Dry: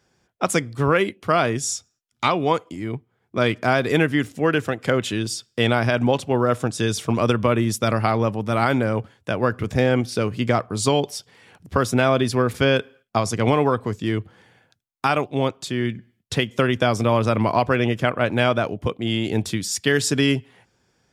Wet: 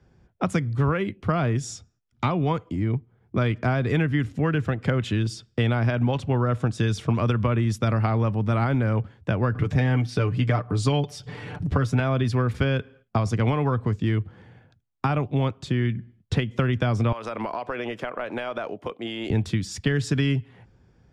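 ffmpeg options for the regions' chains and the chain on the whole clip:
-filter_complex "[0:a]asettb=1/sr,asplit=3[a][b][c];[a]atrim=end=9.554[d];[b]atrim=start=9.55:end=12,asetpts=PTS-STARTPTS,afade=t=in:d=0.004:c=qsin,afade=t=out:st=2.446:d=0.004:c=qsin,aecho=1:1:6.8:0.61,atrim=end_sample=108045,acompressor=mode=upward:threshold=-26dB:ratio=2.5:attack=3.2:release=140:knee=2.83:detection=peak[e];[c]atrim=start=11.996[f];[d][e]acrossfade=d=0.004:c1=hsin:c2=qsin[g];[g][f]acrossfade=d=0.004:c1=qsin:c2=hsin,asettb=1/sr,asplit=3[h][i][j];[h]atrim=end=17.124[k];[i]atrim=start=17.12:end=19.3,asetpts=PTS-STARTPTS,afade=t=in:d=0.004:c=qsin,afade=t=out:st=2.176:d=0.004:c=qsin,highpass=540,highshelf=f=8.3k:g=6.5,acompressor=threshold=-25dB:ratio=6:attack=3.2:release=140:knee=1:detection=peak[l];[j]atrim=start=19.296[m];[k][l]acrossfade=d=0.004:c1=hsin:c2=qsin[n];[n][m]acrossfade=d=0.004:c1=qsin:c2=hsin,aemphasis=mode=reproduction:type=riaa,acrossover=split=180|1000[o][p][q];[o]acompressor=threshold=-25dB:ratio=4[r];[p]acompressor=threshold=-28dB:ratio=4[s];[q]acompressor=threshold=-29dB:ratio=4[t];[r][s][t]amix=inputs=3:normalize=0"

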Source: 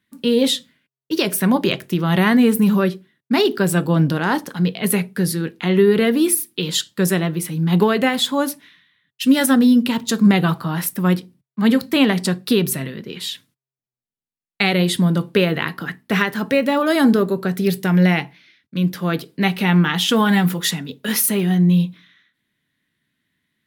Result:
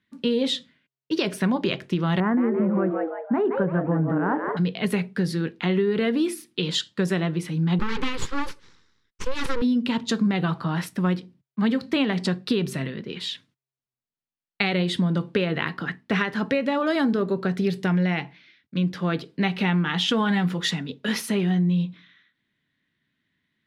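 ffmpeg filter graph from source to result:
-filter_complex "[0:a]asettb=1/sr,asplit=3[a][b][c];[a]atrim=end=2.204[d];[b]atrim=start=2.2:end=4.57,asetpts=PTS-STARTPTS,afade=t=in:d=0.004:c=qsin,afade=t=out:st=2.366:d=0.004:c=qsin,lowpass=f=1.5k:w=0.5412,lowpass=f=1.5k:w=1.3066,asplit=5[e][f][g][h][i];[f]adelay=170,afreqshift=140,volume=-7dB[j];[g]adelay=340,afreqshift=280,volume=-15.6dB[k];[h]adelay=510,afreqshift=420,volume=-24.3dB[l];[i]adelay=680,afreqshift=560,volume=-32.9dB[m];[e][j][k][l][m]amix=inputs=5:normalize=0,atrim=end_sample=104517[n];[c]atrim=start=4.566[o];[d][n]acrossfade=d=0.004:c1=hsin:c2=qsin[p];[p][o]acrossfade=d=0.004:c1=qsin:c2=hsin,asettb=1/sr,asplit=3[q][r][s];[q]atrim=end=7.794[t];[r]atrim=start=7.79:end=9.62,asetpts=PTS-STARTPTS,afade=t=in:d=0.004:c=qsin,afade=t=out:st=1.826:d=0.004:c=qsin,aeval=exprs='abs(val(0))':c=same,asuperstop=centerf=670:order=4:qfactor=1.9[u];[s]atrim=start=9.616[v];[t][u]acrossfade=d=0.004:c1=hsin:c2=qsin[w];[w][v]acrossfade=d=0.004:c1=qsin:c2=hsin,lowpass=4.8k,acompressor=threshold=-17dB:ratio=6,volume=-2dB"

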